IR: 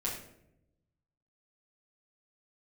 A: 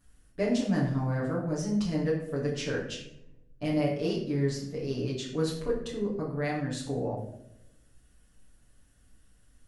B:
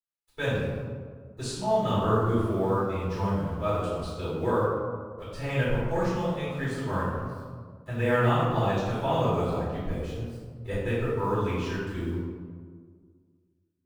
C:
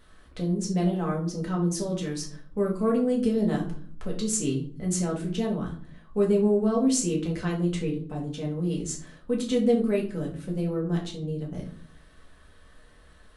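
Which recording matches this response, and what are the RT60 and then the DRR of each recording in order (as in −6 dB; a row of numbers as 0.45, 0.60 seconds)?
A; 0.80, 1.8, 0.50 seconds; −6.5, −12.0, −2.5 decibels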